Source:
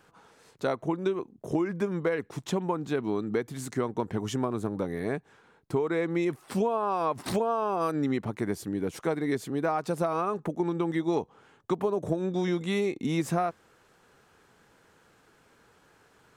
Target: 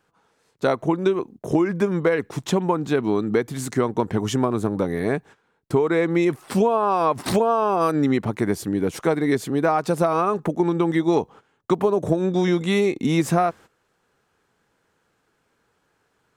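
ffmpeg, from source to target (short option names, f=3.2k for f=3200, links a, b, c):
-af "agate=range=-15dB:threshold=-49dB:ratio=16:detection=peak,volume=8dB"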